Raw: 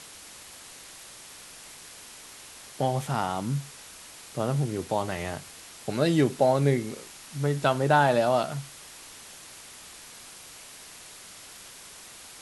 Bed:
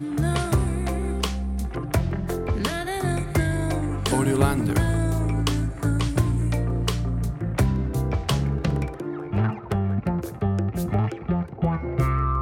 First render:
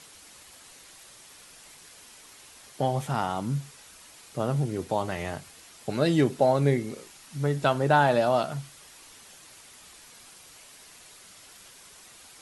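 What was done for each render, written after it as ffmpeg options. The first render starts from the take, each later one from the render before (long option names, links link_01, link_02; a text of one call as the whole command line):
ffmpeg -i in.wav -af "afftdn=noise_reduction=6:noise_floor=-47" out.wav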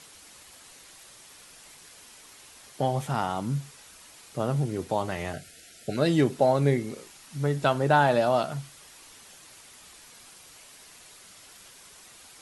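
ffmpeg -i in.wav -filter_complex "[0:a]asplit=3[link_01][link_02][link_03];[link_01]afade=type=out:start_time=5.32:duration=0.02[link_04];[link_02]asuperstop=centerf=1000:order=20:qfactor=1.8,afade=type=in:start_time=5.32:duration=0.02,afade=type=out:start_time=5.96:duration=0.02[link_05];[link_03]afade=type=in:start_time=5.96:duration=0.02[link_06];[link_04][link_05][link_06]amix=inputs=3:normalize=0" out.wav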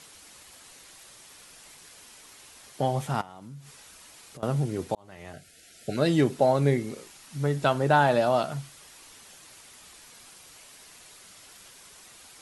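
ffmpeg -i in.wav -filter_complex "[0:a]asettb=1/sr,asplit=3[link_01][link_02][link_03];[link_01]atrim=end=3.214[link_04];[link_02]atrim=start=3.21:end=4.43,asetpts=PTS-STARTPTS,afade=type=in:duration=0.004:curve=qsin,afade=type=out:start_time=1.216:duration=0.004:curve=qsin,acompressor=threshold=-42dB:ratio=5:attack=3.2:release=140:knee=1:detection=peak[link_05];[link_03]atrim=start=4.426[link_06];[link_04][link_05]acrossfade=duration=0.004:curve1=hsin:curve2=qsin[link_07];[link_07][link_06]acrossfade=duration=0.004:curve1=qsin:curve2=hsin,asplit=2[link_08][link_09];[link_08]atrim=end=4.95,asetpts=PTS-STARTPTS,afade=type=out:start_time=4.946:duration=0.004:curve=hsin[link_10];[link_09]atrim=start=4.95,asetpts=PTS-STARTPTS,afade=type=in:duration=0.98[link_11];[link_10][link_11]concat=n=2:v=0:a=1" out.wav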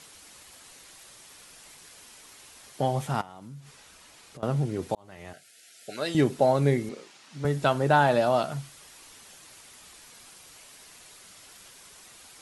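ffmpeg -i in.wav -filter_complex "[0:a]asettb=1/sr,asplit=3[link_01][link_02][link_03];[link_01]atrim=end=3.604[link_04];[link_02]atrim=start=3.6:end=4.83,asetpts=PTS-STARTPTS,afade=type=in:duration=0.004:curve=qsin,afade=type=out:start_time=1.226:duration=0.004:curve=qsin,highshelf=frequency=7900:gain=-8[link_05];[link_03]atrim=start=4.826[link_06];[link_04][link_05]acrossfade=duration=0.004:curve1=hsin:curve2=qsin[link_07];[link_07][link_06]acrossfade=duration=0.004:curve1=qsin:curve2=hsin,asettb=1/sr,asplit=3[link_08][link_09][link_10];[link_08]atrim=end=5.334[link_11];[link_09]atrim=start=5.33:end=6.15,asetpts=PTS-STARTPTS,afade=type=in:duration=0.004:curve=qsin,afade=type=out:start_time=0.816:duration=0.004:curve=qsin,highpass=frequency=980:poles=1[link_12];[link_10]atrim=start=6.146[link_13];[link_11][link_12]acrossfade=duration=0.004:curve1=hsin:curve2=qsin[link_14];[link_14][link_13]acrossfade=duration=0.004:curve1=qsin:curve2=hsin,asettb=1/sr,asplit=3[link_15][link_16][link_17];[link_15]atrim=end=6.894[link_18];[link_16]atrim=start=6.89:end=7.45,asetpts=PTS-STARTPTS,afade=type=in:duration=0.004:curve=qsin,afade=type=out:start_time=0.556:duration=0.004:curve=qsin,highpass=190,lowpass=5800[link_19];[link_17]atrim=start=7.446[link_20];[link_18][link_19]acrossfade=duration=0.004:curve1=hsin:curve2=qsin[link_21];[link_21][link_20]acrossfade=duration=0.004:curve1=qsin:curve2=hsin" out.wav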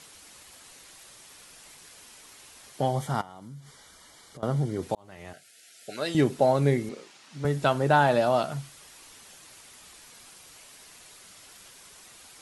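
ffmpeg -i in.wav -filter_complex "[0:a]asettb=1/sr,asplit=3[link_01][link_02][link_03];[link_01]atrim=end=2.894[link_04];[link_02]atrim=start=2.89:end=4.83,asetpts=PTS-STARTPTS,afade=type=in:duration=0.004:curve=qsin,afade=type=out:start_time=1.936:duration=0.004:curve=qsin,asuperstop=centerf=2600:order=8:qfactor=5.4[link_05];[link_03]atrim=start=4.826[link_06];[link_04][link_05]acrossfade=duration=0.004:curve1=hsin:curve2=qsin[link_07];[link_07][link_06]acrossfade=duration=0.004:curve1=qsin:curve2=hsin" out.wav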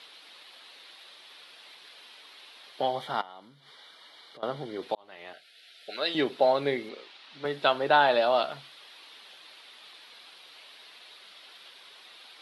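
ffmpeg -i in.wav -af "highpass=400,highshelf=frequency=5200:width_type=q:width=3:gain=-11.5" out.wav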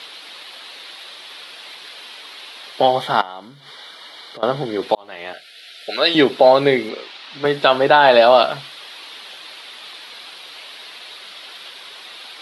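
ffmpeg -i in.wav -af "alimiter=level_in=13.5dB:limit=-1dB:release=50:level=0:latency=1" out.wav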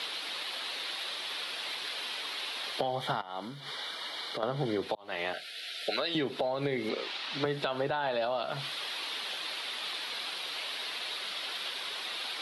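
ffmpeg -i in.wav -filter_complex "[0:a]alimiter=limit=-11.5dB:level=0:latency=1:release=201,acrossover=split=140[link_01][link_02];[link_02]acompressor=threshold=-29dB:ratio=6[link_03];[link_01][link_03]amix=inputs=2:normalize=0" out.wav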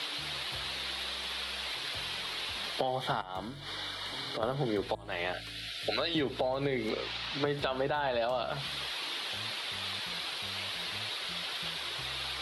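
ffmpeg -i in.wav -i bed.wav -filter_complex "[1:a]volume=-28dB[link_01];[0:a][link_01]amix=inputs=2:normalize=0" out.wav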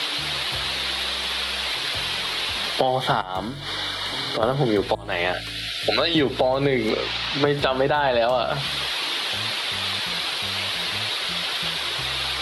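ffmpeg -i in.wav -af "volume=11dB" out.wav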